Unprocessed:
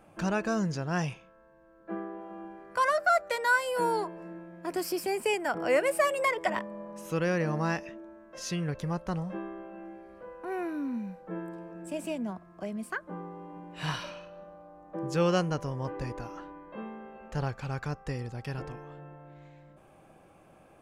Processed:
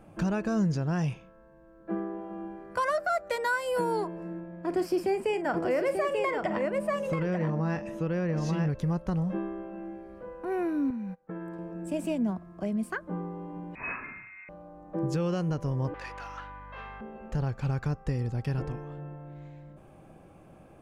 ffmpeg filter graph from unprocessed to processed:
ffmpeg -i in.wav -filter_complex "[0:a]asettb=1/sr,asplit=3[link_01][link_02][link_03];[link_01]atrim=end=4.404[link_04];[link_02]atrim=start=4.4:end=8.7,asetpts=PTS-STARTPTS,afade=type=in:duration=0.004:curve=qsin,afade=type=out:start_time=4.296:duration=0.004:curve=qsin,aemphasis=mode=reproduction:type=50kf,aecho=1:1:44|888:0.251|0.631,atrim=end_sample=189630[link_05];[link_03]atrim=start=8.696[link_06];[link_04][link_05]acrossfade=duration=0.004:curve1=hsin:curve2=qsin[link_07];[link_07][link_06]acrossfade=duration=0.004:curve1=qsin:curve2=hsin,asettb=1/sr,asplit=3[link_08][link_09][link_10];[link_08]atrim=end=10.904[link_11];[link_09]atrim=start=10.9:end=11.59,asetpts=PTS-STARTPTS,afade=type=in:duration=0.004:curve=qsin,afade=type=out:start_time=0.686:duration=0.004:curve=qsin,agate=range=-24dB:threshold=-43dB:ratio=16:release=100:detection=peak,equalizer=frequency=1500:width=0.7:gain=6.5,acompressor=threshold=-40dB:ratio=4:attack=3.2:release=140:knee=1:detection=peak[link_12];[link_10]atrim=start=11.586[link_13];[link_11][link_12]acrossfade=duration=0.004:curve1=hsin:curve2=qsin[link_14];[link_14][link_13]acrossfade=duration=0.004:curve1=qsin:curve2=hsin,asettb=1/sr,asplit=3[link_15][link_16][link_17];[link_15]atrim=end=13.754[link_18];[link_16]atrim=start=13.75:end=14.49,asetpts=PTS-STARTPTS,afade=type=in:duration=0.004:curve=qsin,afade=type=out:start_time=0.736:duration=0.004:curve=qsin,aeval=exprs='0.0398*(abs(mod(val(0)/0.0398+3,4)-2)-1)':channel_layout=same,lowpass=frequency=2300:width_type=q:width=0.5098,lowpass=frequency=2300:width_type=q:width=0.6013,lowpass=frequency=2300:width_type=q:width=0.9,lowpass=frequency=2300:width_type=q:width=2.563,afreqshift=-2700[link_19];[link_17]atrim=start=14.486[link_20];[link_18][link_19]acrossfade=duration=0.004:curve1=hsin:curve2=qsin[link_21];[link_21][link_20]acrossfade=duration=0.004:curve1=qsin:curve2=hsin,asettb=1/sr,asplit=3[link_22][link_23][link_24];[link_22]atrim=end=15.944[link_25];[link_23]atrim=start=15.94:end=17.01,asetpts=PTS-STARTPTS,afade=type=in:duration=0.004:curve=qsin,afade=type=out:start_time=1.066:duration=0.004:curve=qsin,asplit=2[link_26][link_27];[link_27]highpass=frequency=720:poles=1,volume=19dB,asoftclip=type=tanh:threshold=-23dB[link_28];[link_26][link_28]amix=inputs=2:normalize=0,lowpass=frequency=2000:poles=1,volume=-6dB,highpass=1300,aeval=exprs='val(0)+0.00158*(sin(2*PI*50*n/s)+sin(2*PI*2*50*n/s)/2+sin(2*PI*3*50*n/s)/3+sin(2*PI*4*50*n/s)/4+sin(2*PI*5*50*n/s)/5)':channel_layout=same[link_29];[link_24]atrim=start=17.006[link_30];[link_25][link_29]acrossfade=duration=0.004:curve1=hsin:curve2=qsin[link_31];[link_31][link_30]acrossfade=duration=0.004:curve1=qsin:curve2=hsin,lowshelf=frequency=410:gain=10,alimiter=limit=-18.5dB:level=0:latency=1:release=190,volume=-1dB" out.wav

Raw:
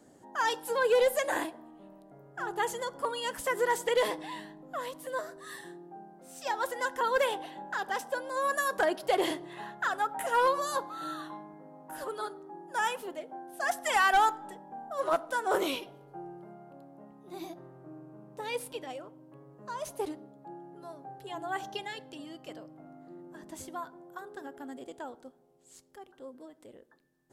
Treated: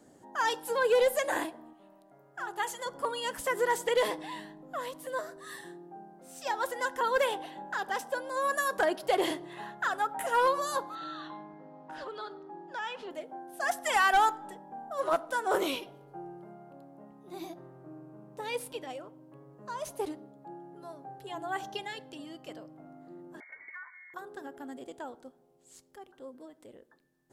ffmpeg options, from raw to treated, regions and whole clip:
ffmpeg -i in.wav -filter_complex "[0:a]asettb=1/sr,asplit=3[link_01][link_02][link_03];[link_01]atrim=end=1.734[link_04];[link_02]atrim=start=1.73:end=2.86,asetpts=PTS-STARTPTS,afade=type=in:duration=0.004:curve=qsin,afade=type=out:start_time=1.126:duration=0.004:curve=qsin,lowshelf=frequency=390:gain=-11,bandreject=frequency=460:width=8.3[link_05];[link_03]atrim=start=2.856[link_06];[link_04][link_05]acrossfade=duration=0.004:curve1=hsin:curve2=qsin[link_07];[link_07][link_06]acrossfade=duration=0.004:curve1=qsin:curve2=hsin,asettb=1/sr,asplit=3[link_08][link_09][link_10];[link_08]atrim=end=10.954[link_11];[link_09]atrim=start=10.95:end=13.11,asetpts=PTS-STARTPTS,afade=type=in:duration=0.004:curve=qsin,afade=type=out:start_time=2.156:duration=0.004:curve=qsin,lowpass=frequency=4200:width=0.5412,lowpass=frequency=4200:width=1.3066,aemphasis=mode=production:type=75kf,acompressor=threshold=-39dB:ratio=2:attack=3.2:release=140:knee=1:detection=peak[link_12];[link_10]atrim=start=13.106[link_13];[link_11][link_12]acrossfade=duration=0.004:curve1=hsin:curve2=qsin[link_14];[link_14][link_13]acrossfade=duration=0.004:curve1=qsin:curve2=hsin,asettb=1/sr,asplit=3[link_15][link_16][link_17];[link_15]atrim=end=23.404[link_18];[link_16]atrim=start=23.4:end=24.14,asetpts=PTS-STARTPTS,afade=type=in:duration=0.004:curve=qsin,afade=type=out:start_time=0.736:duration=0.004:curve=qsin,highpass=frequency=290:width=0.5412,highpass=frequency=290:width=1.3066,lowpass=frequency=2100:width_type=q:width=0.5098,lowpass=frequency=2100:width_type=q:width=0.6013,lowpass=frequency=2100:width_type=q:width=0.9,lowpass=frequency=2100:width_type=q:width=2.563,afreqshift=-2500,acompressor=threshold=-41dB:ratio=4:attack=3.2:release=140:knee=1:detection=peak[link_19];[link_17]atrim=start=24.136[link_20];[link_18][link_19]acrossfade=duration=0.004:curve1=hsin:curve2=qsin[link_21];[link_21][link_20]acrossfade=duration=0.004:curve1=qsin:curve2=hsin" out.wav

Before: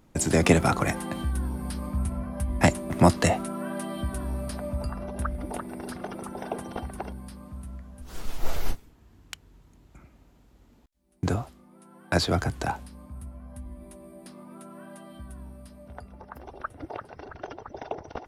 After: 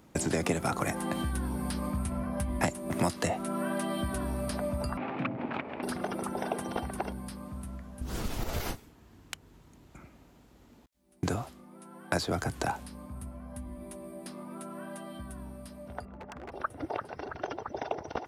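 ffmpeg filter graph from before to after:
ffmpeg -i in.wav -filter_complex "[0:a]asettb=1/sr,asplit=3[link_01][link_02][link_03];[link_01]atrim=end=4.974[link_04];[link_02]atrim=start=4.97:end=5.83,asetpts=PTS-STARTPTS,afade=type=in:duration=0.004:curve=qsin,afade=type=out:start_time=0.856:duration=0.004:curve=qsin,aeval=exprs='abs(val(0))':channel_layout=same,highpass=120,equalizer=frequency=250:width_type=q:width=4:gain=9,equalizer=frequency=470:width_type=q:width=4:gain=-5,equalizer=frequency=820:width_type=q:width=4:gain=3,equalizer=frequency=2400:width_type=q:width=4:gain=9,lowpass=frequency=3400:width=0.5412,lowpass=frequency=3400:width=1.3066[link_05];[link_03]atrim=start=5.826[link_06];[link_04][link_05]acrossfade=duration=0.004:curve1=hsin:curve2=qsin[link_07];[link_07][link_06]acrossfade=duration=0.004:curve1=qsin:curve2=hsin,asettb=1/sr,asplit=3[link_08][link_09][link_10];[link_08]atrim=end=8.014[link_11];[link_09]atrim=start=8.01:end=8.6,asetpts=PTS-STARTPTS,afade=type=in:duration=0.004:curve=qsin,afade=type=out:start_time=0.586:duration=0.004:curve=qsin,lowshelf=frequency=350:gain=11,acompressor=threshold=-12dB:ratio=6:attack=3.2:release=140:knee=1:detection=peak[link_12];[link_10]atrim=start=8.596[link_13];[link_11][link_12]acrossfade=duration=0.004:curve1=hsin:curve2=qsin[link_14];[link_14][link_13]acrossfade=duration=0.004:curve1=qsin:curve2=hsin,asettb=1/sr,asplit=3[link_15][link_16][link_17];[link_15]atrim=end=16.054[link_18];[link_16]atrim=start=16.05:end=16.52,asetpts=PTS-STARTPTS,afade=type=in:duration=0.004:curve=qsin,afade=type=out:start_time=0.466:duration=0.004:curve=qsin,lowpass=1900,aemphasis=mode=reproduction:type=cd,aeval=exprs='0.0112*(abs(mod(val(0)/0.0112+3,4)-2)-1)':channel_layout=same[link_19];[link_17]atrim=start=16.516[link_20];[link_18][link_19]acrossfade=duration=0.004:curve1=hsin:curve2=qsin[link_21];[link_21][link_20]acrossfade=duration=0.004:curve1=qsin:curve2=hsin,highpass=frequency=120:poles=1,acrossover=split=1500|6100[link_22][link_23][link_24];[link_22]acompressor=threshold=-32dB:ratio=4[link_25];[link_23]acompressor=threshold=-44dB:ratio=4[link_26];[link_24]acompressor=threshold=-45dB:ratio=4[link_27];[link_25][link_26][link_27]amix=inputs=3:normalize=0,volume=3.5dB" out.wav

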